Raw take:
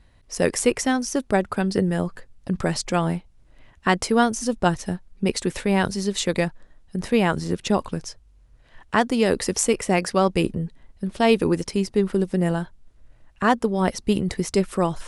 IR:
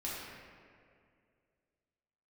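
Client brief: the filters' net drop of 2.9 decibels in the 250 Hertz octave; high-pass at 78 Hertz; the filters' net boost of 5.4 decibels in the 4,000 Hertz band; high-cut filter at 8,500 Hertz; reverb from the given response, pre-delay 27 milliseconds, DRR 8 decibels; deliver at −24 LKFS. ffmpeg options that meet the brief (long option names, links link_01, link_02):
-filter_complex "[0:a]highpass=78,lowpass=8500,equalizer=frequency=250:width_type=o:gain=-4,equalizer=frequency=4000:width_type=o:gain=7.5,asplit=2[link_01][link_02];[1:a]atrim=start_sample=2205,adelay=27[link_03];[link_02][link_03]afir=irnorm=-1:irlink=0,volume=-10.5dB[link_04];[link_01][link_04]amix=inputs=2:normalize=0,volume=-1dB"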